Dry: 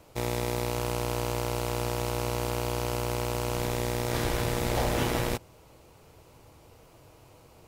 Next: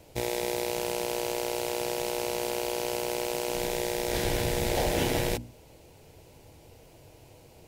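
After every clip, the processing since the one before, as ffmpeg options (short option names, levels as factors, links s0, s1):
-af "equalizer=f=1200:w=2.8:g=-13,bandreject=f=60:t=h:w=6,bandreject=f=120:t=h:w=6,bandreject=f=180:t=h:w=6,bandreject=f=240:t=h:w=6,bandreject=f=300:t=h:w=6,volume=1.33"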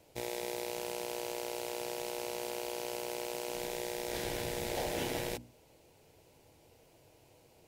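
-af "lowshelf=f=130:g=-8.5,volume=0.422"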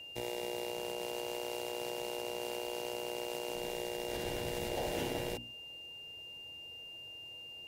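-filter_complex "[0:a]acrossover=split=110|1000[s0][s1][s2];[s0]acrusher=samples=23:mix=1:aa=0.000001:lfo=1:lforange=23:lforate=0.29[s3];[s2]alimiter=level_in=2.51:limit=0.0631:level=0:latency=1:release=118,volume=0.398[s4];[s3][s1][s4]amix=inputs=3:normalize=0,aeval=exprs='val(0)+0.00501*sin(2*PI*2800*n/s)':c=same"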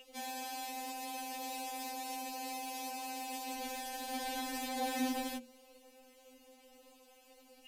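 -af "afftfilt=real='re*3.46*eq(mod(b,12),0)':imag='im*3.46*eq(mod(b,12),0)':win_size=2048:overlap=0.75,volume=1.78"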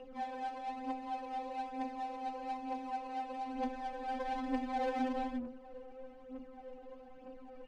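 -af "aeval=exprs='val(0)+0.5*0.00531*sgn(val(0))':c=same,aphaser=in_gain=1:out_gain=1:delay=2.6:decay=0.54:speed=1.1:type=triangular,adynamicsmooth=sensitivity=2.5:basefreq=720,volume=1.19"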